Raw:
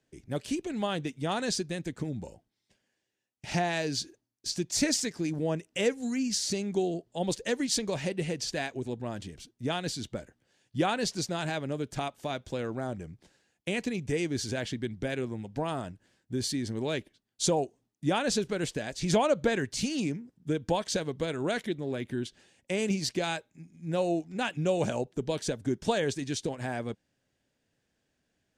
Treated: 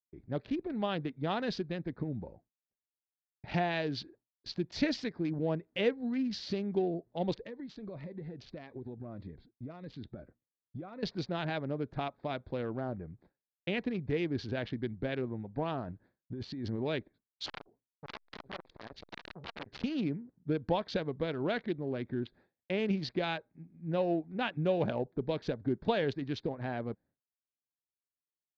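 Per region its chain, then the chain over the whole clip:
0:07.41–0:11.03: downward compressor 16 to 1, threshold −35 dBFS + phaser whose notches keep moving one way falling 1.7 Hz
0:15.88–0:16.82: high-shelf EQ 7,600 Hz +7.5 dB + compressor whose output falls as the input rises −35 dBFS
0:17.46–0:19.84: high-shelf EQ 6,700 Hz +3 dB + wrap-around overflow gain 26 dB + saturating transformer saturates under 1,200 Hz
whole clip: adaptive Wiener filter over 15 samples; Butterworth low-pass 4,300 Hz 36 dB per octave; downward expander −54 dBFS; level −2 dB

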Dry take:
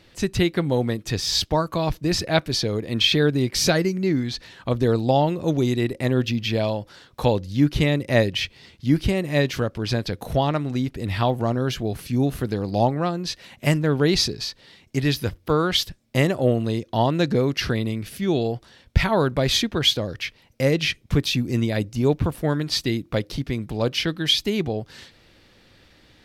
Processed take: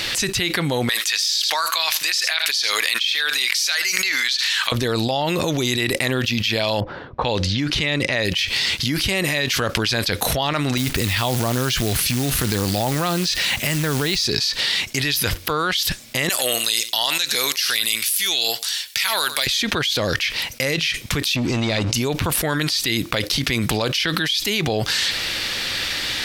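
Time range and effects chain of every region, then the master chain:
0:00.89–0:04.72: high-pass filter 1,500 Hz + upward compression, threshold −34 dBFS + single-tap delay 80 ms −22 dB
0:06.80–0:08.25: low-pass that shuts in the quiet parts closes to 460 Hz, open at −18.5 dBFS + high-frequency loss of the air 67 metres
0:10.77–0:14.26: low-shelf EQ 200 Hz +8 dB + downward compressor 12 to 1, threshold −20 dBFS + log-companded quantiser 6 bits
0:16.29–0:19.47: first difference + single-tap delay 99 ms −20 dB
0:21.36–0:21.94: Butterworth band-reject 1,200 Hz, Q 0.8 + leveller curve on the samples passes 2 + high-frequency loss of the air 90 metres
whole clip: tilt shelving filter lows −9.5 dB; envelope flattener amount 100%; level −14 dB

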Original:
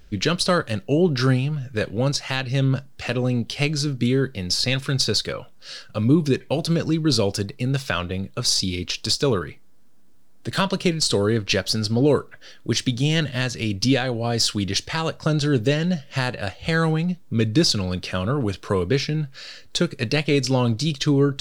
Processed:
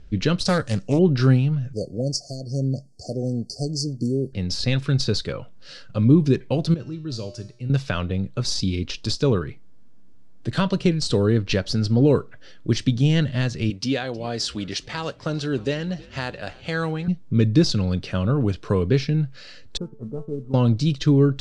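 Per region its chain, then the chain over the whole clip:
0:00.45–0:00.99: flat-topped bell 6,800 Hz +15 dB 1.2 octaves + notch filter 380 Hz, Q 5.2 + highs frequency-modulated by the lows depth 0.29 ms
0:01.73–0:04.33: linear-phase brick-wall band-stop 750–4,300 Hz + spectral tilt +2.5 dB per octave
0:06.74–0:07.70: dynamic equaliser 5,900 Hz, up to +6 dB, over −36 dBFS, Q 1.1 + tuned comb filter 120 Hz, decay 0.58 s, harmonics odd, mix 80%
0:13.70–0:17.08: high-pass filter 460 Hz 6 dB per octave + echo with shifted repeats 315 ms, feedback 62%, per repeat −98 Hz, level −22 dB
0:19.77–0:20.54: Chebyshev low-pass filter 1,300 Hz, order 6 + tuned comb filter 220 Hz, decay 0.39 s, mix 80% + noise that follows the level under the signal 32 dB
whole clip: Bessel low-pass filter 6,600 Hz, order 8; low-shelf EQ 410 Hz +9 dB; level −4.5 dB

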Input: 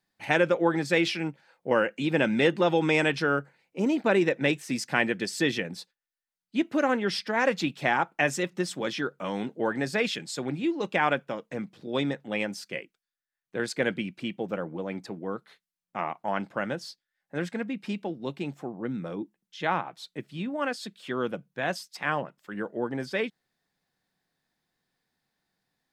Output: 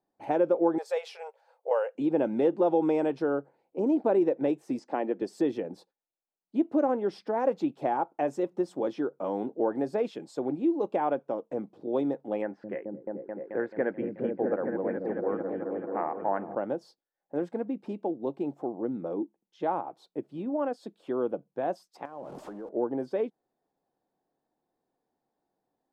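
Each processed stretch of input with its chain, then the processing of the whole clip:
0:00.78–0:01.95: linear-phase brick-wall high-pass 410 Hz + spectral tilt +2.5 dB per octave
0:04.79–0:05.22: high-pass filter 210 Hz 24 dB per octave + high-frequency loss of the air 75 metres + notch filter 1,500 Hz, Q 21
0:12.42–0:16.55: low-pass with resonance 1,800 Hz, resonance Q 5 + echo whose low-pass opens from repeat to repeat 217 ms, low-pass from 200 Hz, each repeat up 1 octave, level 0 dB
0:22.05–0:22.69: converter with a step at zero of −34.5 dBFS + low-pass filter 10,000 Hz + downward compressor 12 to 1, threshold −38 dBFS
whole clip: downward compressor 1.5 to 1, threshold −33 dBFS; drawn EQ curve 180 Hz 0 dB, 300 Hz +12 dB, 820 Hz +11 dB, 1,900 Hz −10 dB; level −6.5 dB

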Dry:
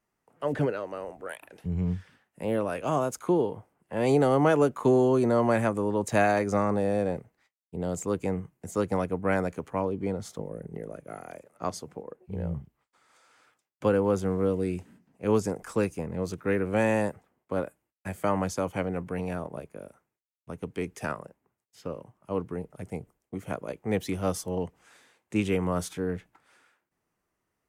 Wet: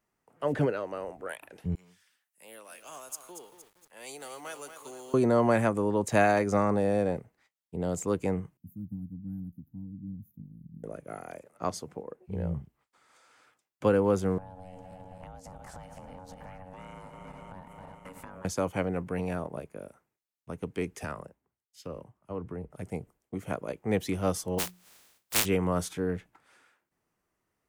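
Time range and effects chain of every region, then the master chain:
0:01.75–0:05.14: high-pass filter 110 Hz 24 dB per octave + first difference + feedback echo at a low word length 232 ms, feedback 55%, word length 9 bits, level −8 dB
0:08.57–0:10.84: inverse Chebyshev band-stop filter 530–8,900 Hz + low-shelf EQ 100 Hz −11.5 dB + phaser with its sweep stopped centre 960 Hz, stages 4
0:14.38–0:18.45: feedback delay that plays each chunk backwards 134 ms, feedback 78%, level −14 dB + downward compressor 16 to 1, threshold −38 dBFS + ring modulation 370 Hz
0:21.03–0:22.72: parametric band 65 Hz +8 dB 1.2 octaves + downward compressor 3 to 1, threshold −33 dBFS + multiband upward and downward expander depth 70%
0:24.58–0:25.44: compressing power law on the bin magnitudes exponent 0.12 + mains-hum notches 60/120/180/240/300/360 Hz
whole clip: no processing

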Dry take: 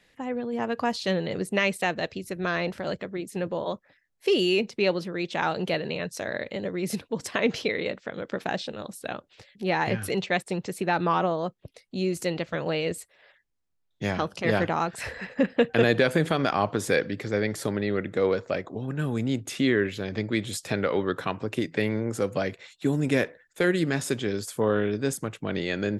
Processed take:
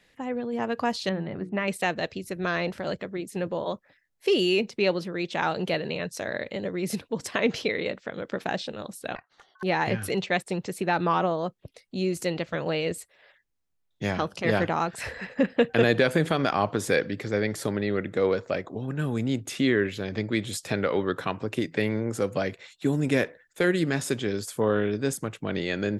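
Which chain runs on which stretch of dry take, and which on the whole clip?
0:01.09–0:01.68: low-pass filter 1,500 Hz + parametric band 480 Hz −10.5 dB 0.46 octaves + mains-hum notches 60/120/180/240/300/360/420/480 Hz
0:09.15–0:09.63: Butterworth band-reject 3,800 Hz, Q 7.2 + high-shelf EQ 4,000 Hz −11 dB + ring modulation 1,300 Hz
whole clip: no processing

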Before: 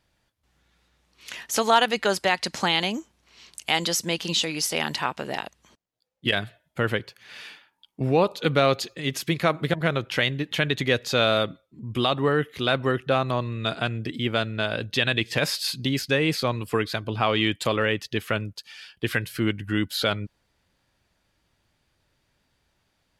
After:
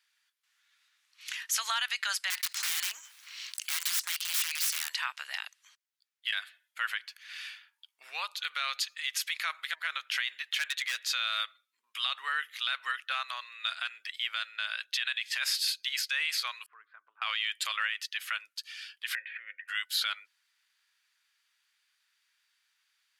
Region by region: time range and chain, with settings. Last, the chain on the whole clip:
0:02.30–0:04.90: mu-law and A-law mismatch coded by A + wrap-around overflow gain 22.5 dB + envelope flattener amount 50%
0:10.56–0:11.09: high-pass filter 360 Hz 24 dB per octave + hard clipping −23 dBFS
0:16.66–0:17.22: low-pass filter 1,100 Hz 24 dB per octave + parametric band 700 Hz −12 dB 1.2 octaves + downward compressor 3 to 1, threshold −32 dBFS
0:19.15–0:19.68: formant resonators in series e + envelope flattener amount 70%
whole clip: high-pass filter 1,400 Hz 24 dB per octave; brickwall limiter −19 dBFS

